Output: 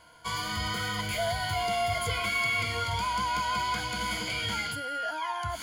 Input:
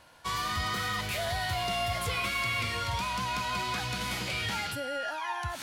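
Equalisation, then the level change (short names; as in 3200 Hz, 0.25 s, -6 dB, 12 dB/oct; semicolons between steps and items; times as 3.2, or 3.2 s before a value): ripple EQ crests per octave 1.8, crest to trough 13 dB; -1.5 dB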